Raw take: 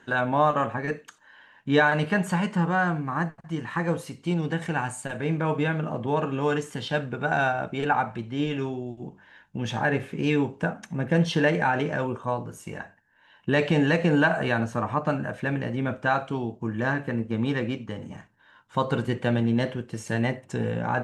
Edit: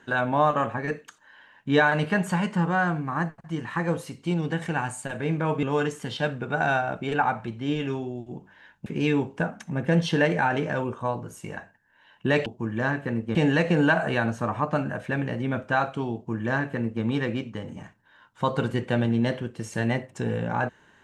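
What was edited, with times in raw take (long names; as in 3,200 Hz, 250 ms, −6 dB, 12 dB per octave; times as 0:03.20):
0:05.63–0:06.34: remove
0:09.57–0:10.09: remove
0:16.48–0:17.37: duplicate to 0:13.69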